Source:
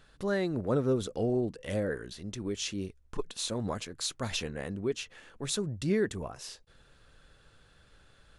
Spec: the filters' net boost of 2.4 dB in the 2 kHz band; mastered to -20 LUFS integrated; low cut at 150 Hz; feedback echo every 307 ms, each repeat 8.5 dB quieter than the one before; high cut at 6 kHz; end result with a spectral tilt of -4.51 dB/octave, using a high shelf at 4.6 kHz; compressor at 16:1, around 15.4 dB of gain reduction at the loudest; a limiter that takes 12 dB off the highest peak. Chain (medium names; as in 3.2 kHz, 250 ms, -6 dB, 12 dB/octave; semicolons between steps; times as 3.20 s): high-pass 150 Hz; low-pass 6 kHz; peaking EQ 2 kHz +4.5 dB; treble shelf 4.6 kHz -7.5 dB; compression 16:1, threshold -39 dBFS; peak limiter -38 dBFS; feedback delay 307 ms, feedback 38%, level -8.5 dB; trim +27.5 dB